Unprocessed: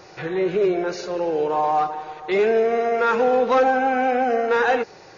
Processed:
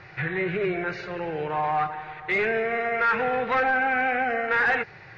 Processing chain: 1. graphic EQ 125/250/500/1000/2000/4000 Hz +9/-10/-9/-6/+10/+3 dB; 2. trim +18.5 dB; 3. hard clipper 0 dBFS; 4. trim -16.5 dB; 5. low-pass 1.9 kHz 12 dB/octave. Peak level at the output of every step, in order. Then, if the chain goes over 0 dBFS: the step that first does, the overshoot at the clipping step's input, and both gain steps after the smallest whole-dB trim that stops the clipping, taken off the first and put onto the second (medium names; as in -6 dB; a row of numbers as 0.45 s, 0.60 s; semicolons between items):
-9.0 dBFS, +9.5 dBFS, 0.0 dBFS, -16.5 dBFS, -16.0 dBFS; step 2, 9.5 dB; step 2 +8.5 dB, step 4 -6.5 dB